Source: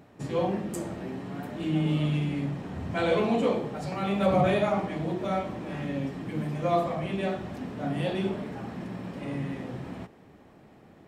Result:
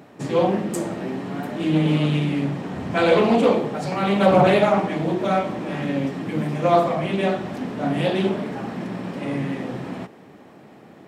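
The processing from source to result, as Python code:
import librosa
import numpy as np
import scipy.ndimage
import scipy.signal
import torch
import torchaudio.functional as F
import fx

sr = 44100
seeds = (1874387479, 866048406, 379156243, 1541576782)

y = scipy.signal.sosfilt(scipy.signal.butter(2, 150.0, 'highpass', fs=sr, output='sos'), x)
y = fx.doppler_dist(y, sr, depth_ms=0.24)
y = y * 10.0 ** (8.5 / 20.0)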